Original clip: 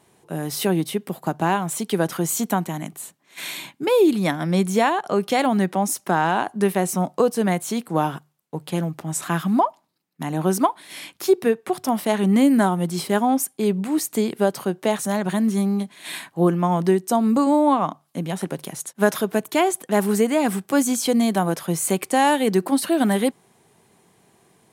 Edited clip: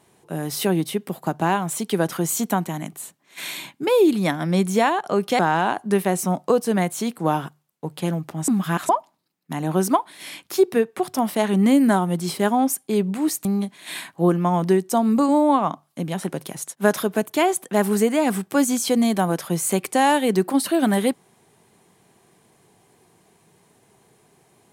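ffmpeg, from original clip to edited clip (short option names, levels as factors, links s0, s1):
-filter_complex "[0:a]asplit=5[s0][s1][s2][s3][s4];[s0]atrim=end=5.392[s5];[s1]atrim=start=6.088:end=9.182[s6];[s2]atrim=start=9.178:end=9.592,asetpts=PTS-STARTPTS,areverse[s7];[s3]atrim=start=9.588:end=14.152[s8];[s4]atrim=start=15.628[s9];[s5][s6]acrossfade=d=0.004:c1=hsin:c2=hsin[s10];[s10][s7]acrossfade=d=0.004:c1=hsin:c2=hsin[s11];[s11][s8]acrossfade=d=0.004:c1=hsin:c2=hsin[s12];[s12][s9]acrossfade=d=0.004:c1=hsin:c2=hsin"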